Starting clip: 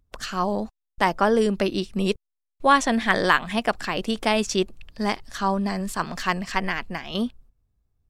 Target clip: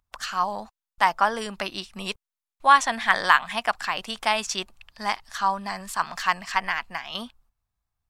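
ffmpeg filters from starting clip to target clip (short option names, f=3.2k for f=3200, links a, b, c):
-af "lowshelf=f=610:t=q:w=1.5:g=-12"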